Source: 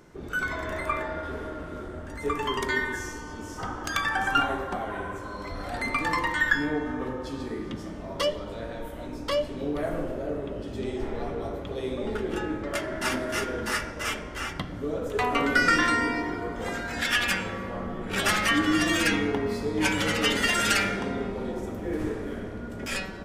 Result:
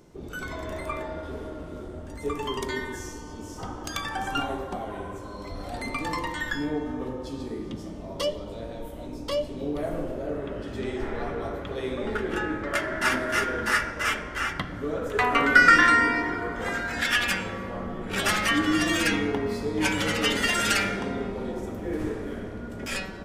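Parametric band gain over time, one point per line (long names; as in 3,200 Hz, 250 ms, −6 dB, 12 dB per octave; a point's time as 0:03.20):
parametric band 1,600 Hz 1.1 octaves
0:09.44 −9 dB
0:10.19 −2.5 dB
0:10.52 +7.5 dB
0:16.58 +7.5 dB
0:17.34 −0.5 dB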